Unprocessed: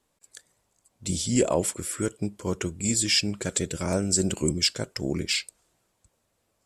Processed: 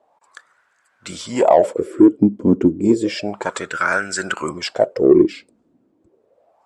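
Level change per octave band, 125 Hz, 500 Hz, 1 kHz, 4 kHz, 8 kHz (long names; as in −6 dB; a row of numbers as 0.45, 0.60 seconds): +1.5, +13.0, +16.0, −4.5, −7.5 decibels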